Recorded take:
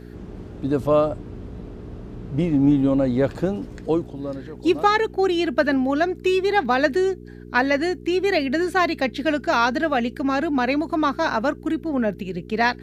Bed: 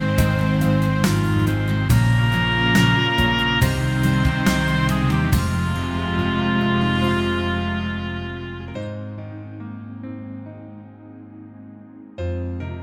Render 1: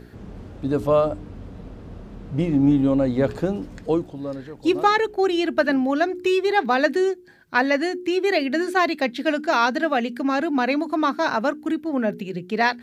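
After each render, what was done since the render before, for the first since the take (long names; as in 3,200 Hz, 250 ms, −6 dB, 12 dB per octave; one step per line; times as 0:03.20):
hum removal 60 Hz, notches 7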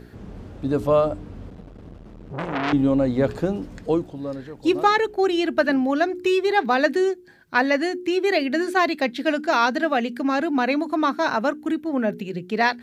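0:01.50–0:02.73: saturating transformer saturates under 2,000 Hz
0:10.53–0:12.16: notch filter 4,800 Hz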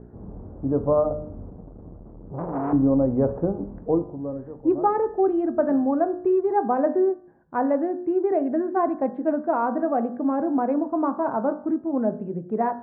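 low-pass filter 1,000 Hz 24 dB per octave
hum removal 50.39 Hz, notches 37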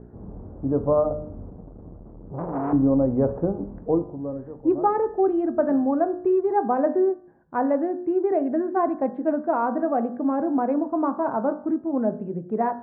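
no processing that can be heard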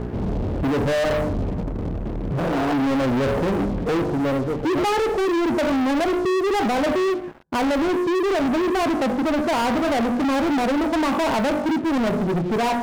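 brickwall limiter −18.5 dBFS, peak gain reduction 9 dB
leveller curve on the samples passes 5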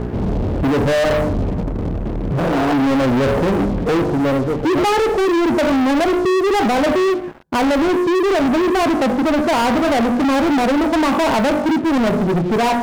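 level +5 dB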